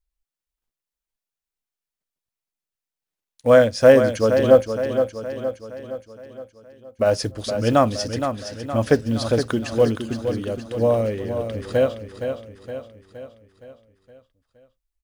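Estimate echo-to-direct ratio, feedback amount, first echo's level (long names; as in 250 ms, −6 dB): −6.5 dB, 52%, −8.0 dB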